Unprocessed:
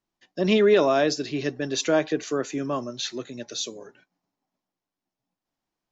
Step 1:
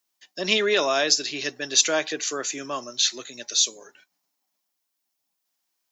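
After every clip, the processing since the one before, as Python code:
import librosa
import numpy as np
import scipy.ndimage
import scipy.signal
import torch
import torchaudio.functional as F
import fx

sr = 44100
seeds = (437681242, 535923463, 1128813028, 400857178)

y = fx.tilt_eq(x, sr, slope=4.5)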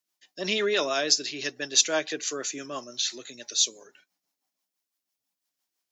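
y = fx.rotary(x, sr, hz=6.0)
y = y * librosa.db_to_amplitude(-1.5)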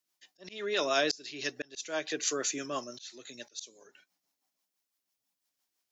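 y = fx.auto_swell(x, sr, attack_ms=499.0)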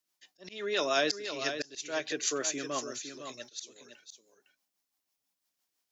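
y = x + 10.0 ** (-9.0 / 20.0) * np.pad(x, (int(509 * sr / 1000.0), 0))[:len(x)]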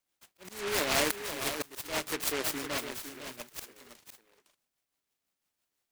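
y = fx.noise_mod_delay(x, sr, seeds[0], noise_hz=1600.0, depth_ms=0.25)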